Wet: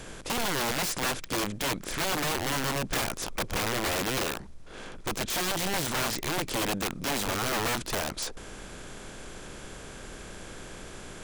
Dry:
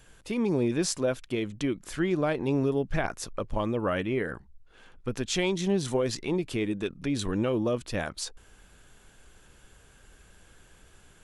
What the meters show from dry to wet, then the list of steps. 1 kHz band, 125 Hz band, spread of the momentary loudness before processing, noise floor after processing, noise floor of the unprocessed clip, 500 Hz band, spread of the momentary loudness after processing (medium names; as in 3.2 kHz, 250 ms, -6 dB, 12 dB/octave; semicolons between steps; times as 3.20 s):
+6.0 dB, -4.0 dB, 8 LU, -44 dBFS, -57 dBFS, -5.0 dB, 15 LU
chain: spectral levelling over time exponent 0.6; integer overflow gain 21.5 dB; trim -2 dB